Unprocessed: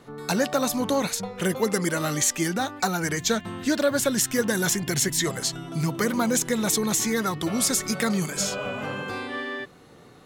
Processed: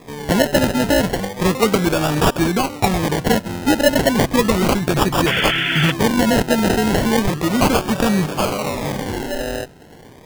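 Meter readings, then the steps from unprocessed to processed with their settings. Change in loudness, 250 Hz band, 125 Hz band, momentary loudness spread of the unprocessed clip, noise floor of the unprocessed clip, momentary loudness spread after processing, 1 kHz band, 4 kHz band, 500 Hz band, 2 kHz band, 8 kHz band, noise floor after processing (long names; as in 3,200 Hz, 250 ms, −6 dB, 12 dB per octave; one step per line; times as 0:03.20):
+7.0 dB, +8.5 dB, +10.0 dB, 8 LU, −50 dBFS, 8 LU, +10.0 dB, +7.5 dB, +8.5 dB, +8.0 dB, −3.0 dB, −42 dBFS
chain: sample-and-hold swept by an LFO 30×, swing 60% 0.34 Hz
sound drawn into the spectrogram noise, 0:05.26–0:05.92, 1,300–3,500 Hz −28 dBFS
level +8 dB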